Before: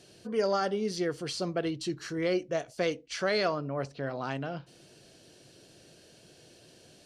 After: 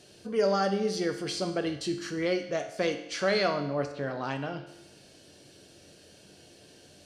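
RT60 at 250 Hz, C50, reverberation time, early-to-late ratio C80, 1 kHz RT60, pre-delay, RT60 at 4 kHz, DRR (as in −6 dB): 0.90 s, 9.5 dB, 0.90 s, 11.5 dB, 0.90 s, 4 ms, 0.85 s, 5.5 dB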